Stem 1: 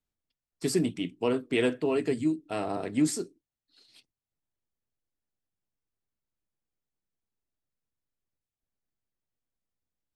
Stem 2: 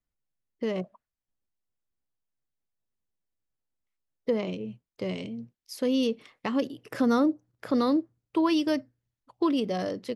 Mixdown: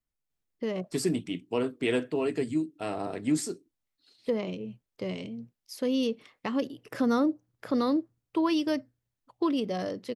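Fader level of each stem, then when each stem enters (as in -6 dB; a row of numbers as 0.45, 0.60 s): -1.5, -2.0 dB; 0.30, 0.00 s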